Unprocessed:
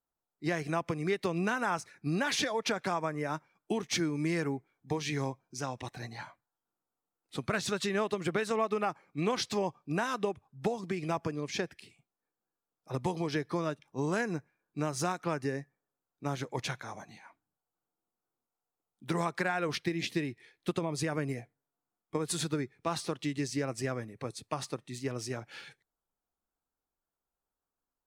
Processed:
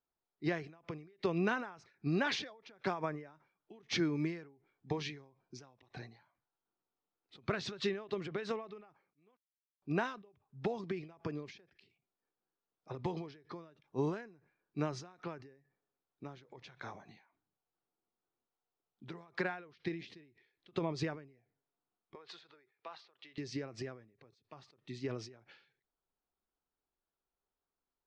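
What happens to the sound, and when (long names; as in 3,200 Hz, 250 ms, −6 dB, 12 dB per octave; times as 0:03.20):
0:09.37–0:09.82: silence
0:22.15–0:23.38: three-way crossover with the lows and the highs turned down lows −24 dB, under 510 Hz, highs −21 dB, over 5,200 Hz
whole clip: low-pass filter 4,900 Hz 24 dB per octave; parametric band 390 Hz +5.5 dB 0.24 octaves; every ending faded ahead of time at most 110 dB per second; level −2 dB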